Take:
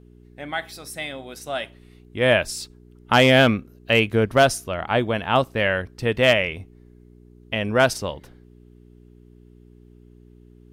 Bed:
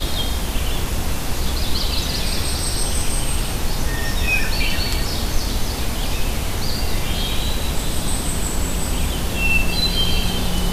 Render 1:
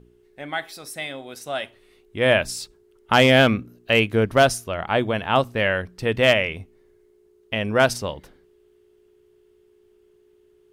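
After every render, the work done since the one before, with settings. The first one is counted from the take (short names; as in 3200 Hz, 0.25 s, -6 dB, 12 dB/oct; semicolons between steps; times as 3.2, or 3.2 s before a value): de-hum 60 Hz, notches 5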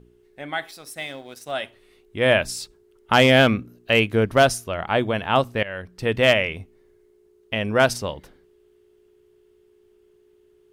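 0.71–1.52 G.711 law mismatch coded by A; 5.63–6.05 fade in, from -18 dB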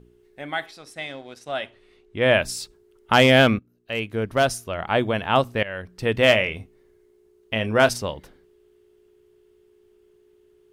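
0.66–2.34 air absorption 64 m; 3.59–4.97 fade in linear, from -21 dB; 6.18–7.89 doubler 27 ms -12 dB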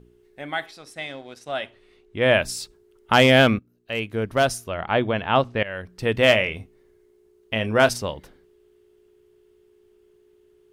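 4.7–5.65 LPF 4300 Hz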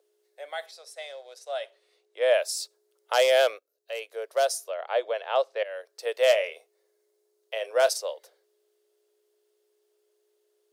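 steep high-pass 490 Hz 48 dB/oct; band shelf 1600 Hz -10 dB 2.3 oct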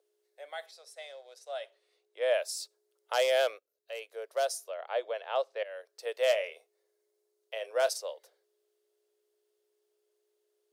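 gain -6 dB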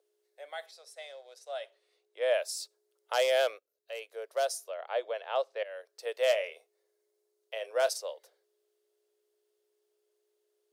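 nothing audible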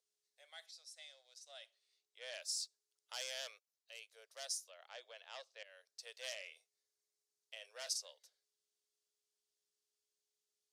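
soft clip -26 dBFS, distortion -12 dB; band-pass 5900 Hz, Q 1.2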